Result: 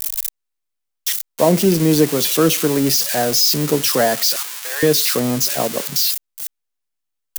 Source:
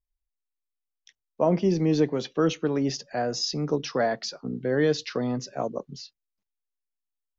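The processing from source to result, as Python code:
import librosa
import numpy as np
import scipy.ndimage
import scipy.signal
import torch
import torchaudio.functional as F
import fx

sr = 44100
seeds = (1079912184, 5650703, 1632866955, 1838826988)

y = x + 0.5 * 10.0 ** (-18.0 / 20.0) * np.diff(np.sign(x), prepend=np.sign(x[:1]))
y = fx.highpass(y, sr, hz=850.0, slope=24, at=(4.36, 4.83))
y = F.gain(torch.from_numpy(y), 8.0).numpy()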